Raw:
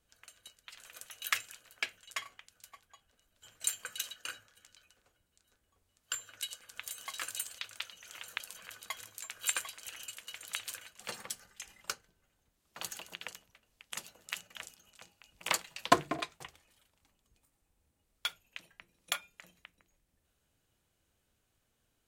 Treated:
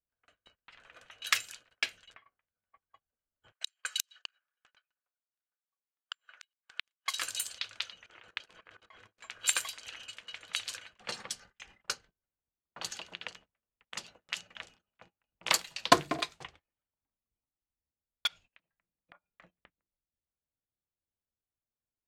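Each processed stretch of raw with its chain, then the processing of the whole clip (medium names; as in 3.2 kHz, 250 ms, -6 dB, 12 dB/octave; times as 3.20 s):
2.14–2.81 s: compression 8:1, threshold -50 dBFS + distance through air 260 m + doubling 14 ms -13.5 dB
3.52–7.18 s: high-pass 980 Hz + transient shaper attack +8 dB, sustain +1 dB + inverted gate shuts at -20 dBFS, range -41 dB
8.06–9.21 s: median filter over 3 samples + peaking EQ 370 Hz +7 dB 0.52 oct + level held to a coarse grid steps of 18 dB
18.27–19.26 s: low-pass that closes with the level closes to 1.1 kHz, closed at -38 dBFS + peaking EQ 380 Hz -5.5 dB 0.42 oct + compression, threshold -52 dBFS
whole clip: gate -57 dBFS, range -23 dB; level-controlled noise filter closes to 1.5 kHz, open at -34.5 dBFS; dynamic bell 4.6 kHz, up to +6 dB, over -53 dBFS, Q 1.2; trim +2 dB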